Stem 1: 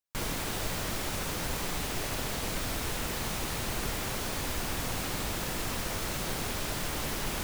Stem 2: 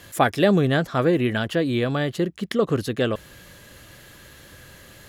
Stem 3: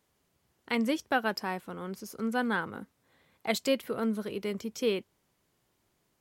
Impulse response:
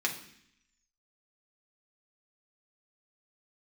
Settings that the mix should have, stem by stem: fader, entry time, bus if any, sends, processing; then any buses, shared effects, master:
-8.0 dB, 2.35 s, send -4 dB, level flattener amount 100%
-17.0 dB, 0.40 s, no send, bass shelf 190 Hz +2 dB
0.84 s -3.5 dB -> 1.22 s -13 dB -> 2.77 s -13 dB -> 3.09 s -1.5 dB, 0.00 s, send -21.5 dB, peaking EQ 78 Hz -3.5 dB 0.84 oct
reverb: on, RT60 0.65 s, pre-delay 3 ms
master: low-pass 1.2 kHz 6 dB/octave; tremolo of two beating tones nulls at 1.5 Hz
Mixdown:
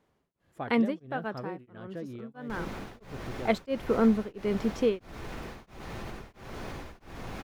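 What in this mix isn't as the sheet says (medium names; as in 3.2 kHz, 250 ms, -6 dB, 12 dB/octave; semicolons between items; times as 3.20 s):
stem 3 -3.5 dB -> +6.5 dB; reverb return -8.0 dB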